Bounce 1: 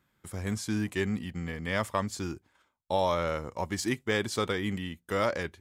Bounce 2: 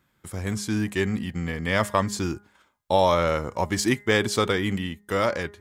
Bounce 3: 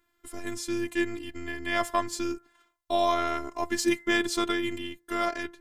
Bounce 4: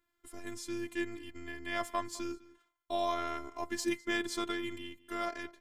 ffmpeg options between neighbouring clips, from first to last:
ffmpeg -i in.wav -af "dynaudnorm=framelen=520:gausssize=5:maxgain=3dB,bandreject=frequency=205.2:width_type=h:width=4,bandreject=frequency=410.4:width_type=h:width=4,bandreject=frequency=615.6:width_type=h:width=4,bandreject=frequency=820.8:width_type=h:width=4,bandreject=frequency=1026:width_type=h:width=4,bandreject=frequency=1231.2:width_type=h:width=4,bandreject=frequency=1436.4:width_type=h:width=4,bandreject=frequency=1641.6:width_type=h:width=4,bandreject=frequency=1846.8:width_type=h:width=4,bandreject=frequency=2052:width_type=h:width=4,volume=4.5dB" out.wav
ffmpeg -i in.wav -af "afftfilt=real='hypot(re,im)*cos(PI*b)':imag='0':win_size=512:overlap=0.75" out.wav
ffmpeg -i in.wav -filter_complex "[0:a]asplit=2[link_01][link_02];[link_02]adelay=204.1,volume=-20dB,highshelf=frequency=4000:gain=-4.59[link_03];[link_01][link_03]amix=inputs=2:normalize=0,volume=-8dB" out.wav

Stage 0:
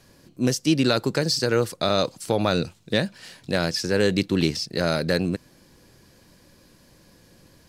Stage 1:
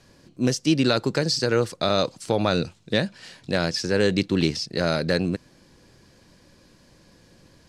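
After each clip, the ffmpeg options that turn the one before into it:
ffmpeg -i in.wav -af "lowpass=8200" out.wav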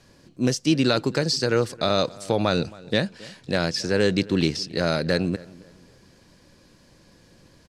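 ffmpeg -i in.wav -filter_complex "[0:a]asplit=2[link_01][link_02];[link_02]adelay=271,lowpass=frequency=2600:poles=1,volume=-21dB,asplit=2[link_03][link_04];[link_04]adelay=271,lowpass=frequency=2600:poles=1,volume=0.34,asplit=2[link_05][link_06];[link_06]adelay=271,lowpass=frequency=2600:poles=1,volume=0.34[link_07];[link_01][link_03][link_05][link_07]amix=inputs=4:normalize=0" out.wav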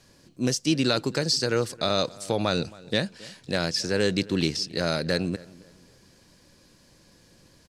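ffmpeg -i in.wav -af "highshelf=frequency=4300:gain=7,volume=-3.5dB" out.wav

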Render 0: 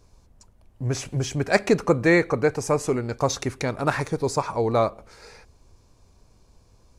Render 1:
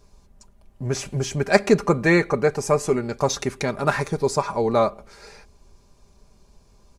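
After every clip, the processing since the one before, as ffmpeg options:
ffmpeg -i in.wav -af "aecho=1:1:5:0.49,volume=1dB" out.wav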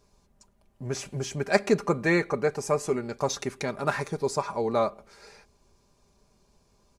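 ffmpeg -i in.wav -af "lowshelf=frequency=73:gain=-10,volume=-5.5dB" out.wav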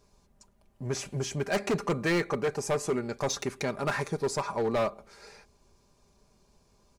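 ffmpeg -i in.wav -af "asoftclip=type=hard:threshold=-23dB" out.wav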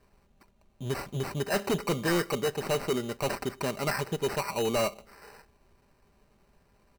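ffmpeg -i in.wav -af "acrusher=samples=13:mix=1:aa=0.000001" out.wav

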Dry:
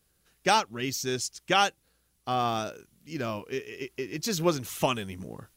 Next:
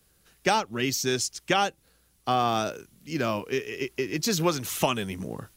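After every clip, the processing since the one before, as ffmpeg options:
ffmpeg -i in.wav -filter_complex "[0:a]acrossover=split=120|770[link_01][link_02][link_03];[link_01]acompressor=threshold=-51dB:ratio=4[link_04];[link_02]acompressor=threshold=-30dB:ratio=4[link_05];[link_03]acompressor=threshold=-31dB:ratio=4[link_06];[link_04][link_05][link_06]amix=inputs=3:normalize=0,volume=6dB" out.wav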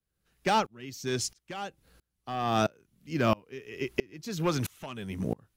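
ffmpeg -i in.wav -af "bass=frequency=250:gain=4,treble=frequency=4000:gain=-5,asoftclip=type=hard:threshold=-16dB,aeval=exprs='val(0)*pow(10,-29*if(lt(mod(-1.5*n/s,1),2*abs(-1.5)/1000),1-mod(-1.5*n/s,1)/(2*abs(-1.5)/1000),(mod(-1.5*n/s,1)-2*abs(-1.5)/1000)/(1-2*abs(-1.5)/1000))/20)':channel_layout=same,volume=4.5dB" out.wav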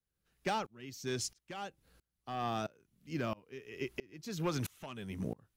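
ffmpeg -i in.wav -af "alimiter=limit=-21dB:level=0:latency=1:release=54,volume=-5.5dB" out.wav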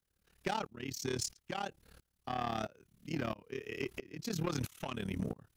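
ffmpeg -i in.wav -af "acompressor=threshold=-41dB:ratio=2,tremolo=f=36:d=0.919,asoftclip=type=tanh:threshold=-37dB,volume=10.5dB" out.wav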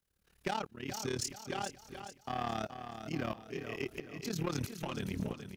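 ffmpeg -i in.wav -af "aecho=1:1:425|850|1275|1700:0.355|0.142|0.0568|0.0227" out.wav

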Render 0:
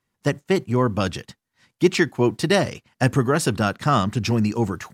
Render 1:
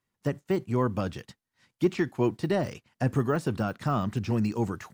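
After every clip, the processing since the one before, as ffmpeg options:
ffmpeg -i in.wav -af "deesser=0.95,volume=-6dB" out.wav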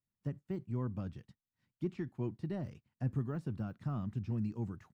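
ffmpeg -i in.wav -af "firequalizer=gain_entry='entry(140,0);entry(450,-11);entry(6800,-17)':delay=0.05:min_phase=1,volume=-7dB" out.wav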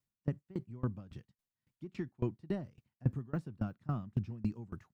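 ffmpeg -i in.wav -af "aeval=exprs='val(0)*pow(10,-25*if(lt(mod(3.6*n/s,1),2*abs(3.6)/1000),1-mod(3.6*n/s,1)/(2*abs(3.6)/1000),(mod(3.6*n/s,1)-2*abs(3.6)/1000)/(1-2*abs(3.6)/1000))/20)':channel_layout=same,volume=6.5dB" out.wav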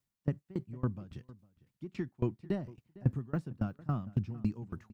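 ffmpeg -i in.wav -filter_complex "[0:a]asplit=2[link_01][link_02];[link_02]adelay=454.8,volume=-20dB,highshelf=frequency=4000:gain=-10.2[link_03];[link_01][link_03]amix=inputs=2:normalize=0,volume=2.5dB" out.wav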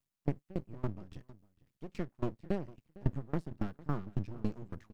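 ffmpeg -i in.wav -af "aeval=exprs='max(val(0),0)':channel_layout=same,volume=2dB" out.wav

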